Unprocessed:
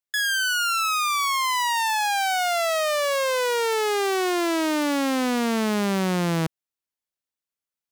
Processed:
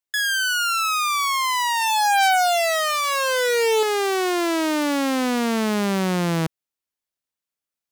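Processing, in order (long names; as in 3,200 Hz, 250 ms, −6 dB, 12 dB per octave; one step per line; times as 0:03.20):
0:01.81–0:03.83: comb filter 2.6 ms, depth 85%
level +1.5 dB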